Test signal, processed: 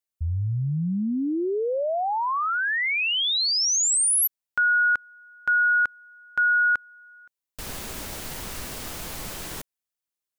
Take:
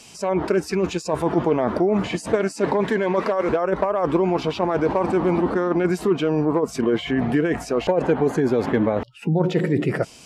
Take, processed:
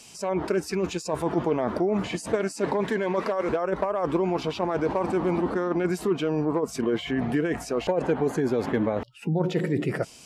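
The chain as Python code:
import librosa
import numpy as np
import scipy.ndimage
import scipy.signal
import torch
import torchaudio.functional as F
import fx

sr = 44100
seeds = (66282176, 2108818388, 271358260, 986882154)

y = fx.high_shelf(x, sr, hz=5800.0, db=5.5)
y = y * librosa.db_to_amplitude(-5.0)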